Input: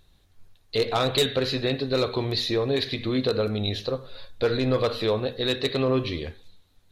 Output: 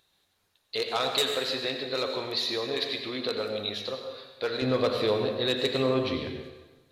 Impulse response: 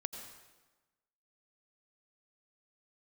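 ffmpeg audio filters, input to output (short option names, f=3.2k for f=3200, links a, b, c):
-filter_complex "[0:a]asetnsamples=n=441:p=0,asendcmd='4.62 highpass f 140',highpass=f=740:p=1[a];[1:a]atrim=start_sample=2205[b];[a][b]afir=irnorm=-1:irlink=0"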